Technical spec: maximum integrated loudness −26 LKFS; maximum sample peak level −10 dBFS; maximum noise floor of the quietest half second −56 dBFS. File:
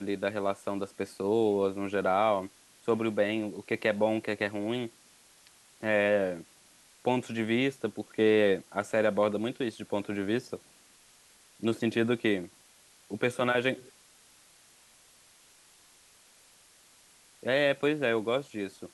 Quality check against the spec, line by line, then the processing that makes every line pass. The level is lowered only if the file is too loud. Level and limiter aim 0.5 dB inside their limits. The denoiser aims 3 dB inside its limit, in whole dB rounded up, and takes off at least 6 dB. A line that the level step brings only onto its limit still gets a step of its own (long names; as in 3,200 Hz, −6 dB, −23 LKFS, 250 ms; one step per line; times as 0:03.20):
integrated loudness −29.5 LKFS: in spec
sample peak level −12.5 dBFS: in spec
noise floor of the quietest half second −60 dBFS: in spec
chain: no processing needed